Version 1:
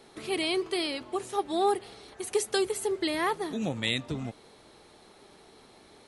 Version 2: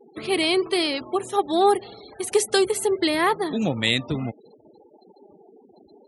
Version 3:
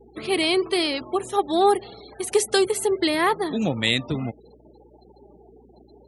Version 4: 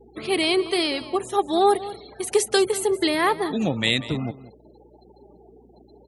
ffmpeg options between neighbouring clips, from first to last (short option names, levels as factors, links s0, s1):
-af "afftfilt=real='re*gte(hypot(re,im),0.00562)':imag='im*gte(hypot(re,im),0.00562)':win_size=1024:overlap=0.75,highpass=71,volume=2.37"
-af "aeval=exprs='val(0)+0.00158*(sin(2*PI*60*n/s)+sin(2*PI*2*60*n/s)/2+sin(2*PI*3*60*n/s)/3+sin(2*PI*4*60*n/s)/4+sin(2*PI*5*60*n/s)/5)':c=same"
-af "aecho=1:1:189:0.15"